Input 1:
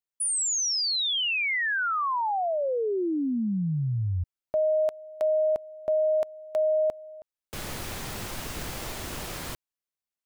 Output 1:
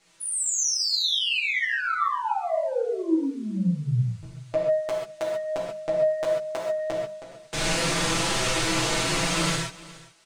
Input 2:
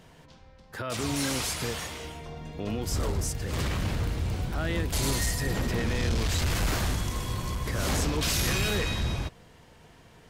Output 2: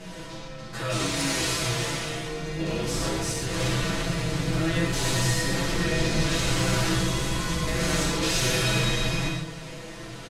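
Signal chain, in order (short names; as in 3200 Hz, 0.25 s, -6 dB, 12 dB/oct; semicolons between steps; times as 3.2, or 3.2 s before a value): per-bin compression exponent 0.6; LPF 9500 Hz 12 dB/oct; notches 50/100/150/200 Hz; comb 6 ms, depth 91%; soft clip -13.5 dBFS; chorus voices 4, 0.2 Hz, delay 11 ms, depth 4.6 ms; echo 0.417 s -20 dB; non-linear reverb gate 0.16 s flat, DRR -2 dB; gain -2.5 dB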